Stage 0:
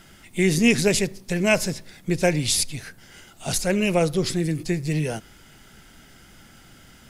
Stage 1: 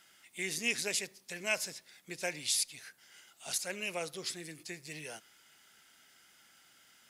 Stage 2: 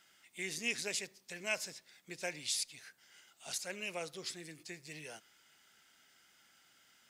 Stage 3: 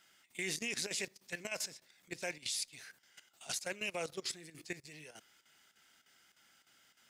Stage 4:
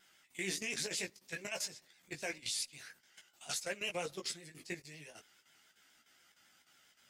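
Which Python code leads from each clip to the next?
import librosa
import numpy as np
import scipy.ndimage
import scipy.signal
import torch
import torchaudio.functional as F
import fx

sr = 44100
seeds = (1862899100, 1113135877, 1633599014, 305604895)

y1 = fx.highpass(x, sr, hz=1500.0, slope=6)
y1 = y1 * librosa.db_to_amplitude(-8.5)
y2 = fx.peak_eq(y1, sr, hz=11000.0, db=-7.5, octaves=0.33)
y2 = y2 * librosa.db_to_amplitude(-3.5)
y3 = fx.level_steps(y2, sr, step_db=15)
y3 = fx.chopper(y3, sr, hz=3.3, depth_pct=65, duty_pct=85)
y3 = y3 * librosa.db_to_amplitude(7.5)
y4 = fx.vibrato(y3, sr, rate_hz=7.3, depth_cents=77.0)
y4 = fx.chorus_voices(y4, sr, voices=4, hz=0.48, base_ms=16, depth_ms=4.9, mix_pct=40)
y4 = y4 * librosa.db_to_amplitude(3.0)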